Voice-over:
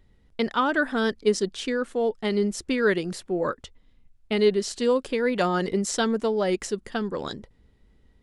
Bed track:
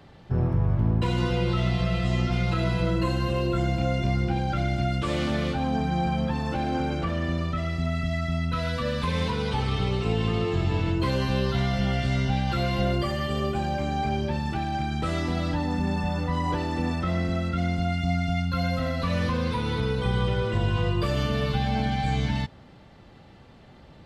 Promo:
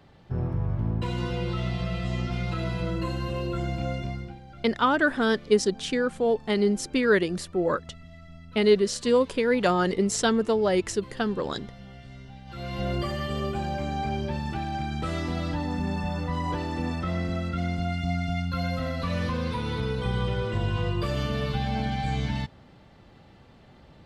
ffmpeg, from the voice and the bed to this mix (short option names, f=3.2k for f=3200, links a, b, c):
-filter_complex "[0:a]adelay=4250,volume=1dB[a];[1:a]volume=13dB,afade=t=out:st=3.9:d=0.49:silence=0.16788,afade=t=in:st=12.45:d=0.54:silence=0.133352[b];[a][b]amix=inputs=2:normalize=0"